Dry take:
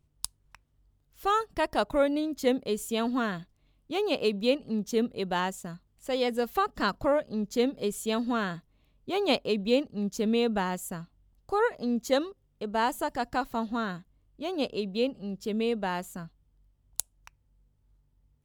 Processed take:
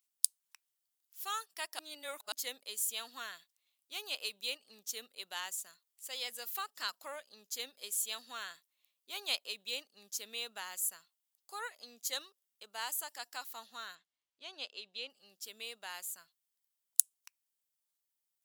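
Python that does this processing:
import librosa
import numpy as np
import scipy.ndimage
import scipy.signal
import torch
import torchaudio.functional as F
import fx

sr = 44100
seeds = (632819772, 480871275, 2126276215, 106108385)

y = fx.lowpass(x, sr, hz=4800.0, slope=12, at=(13.95, 15.1))
y = fx.edit(y, sr, fx.reverse_span(start_s=1.79, length_s=0.53), tone=tone)
y = fx.highpass(y, sr, hz=680.0, slope=6)
y = np.diff(y, prepend=0.0)
y = y * 10.0 ** (3.5 / 20.0)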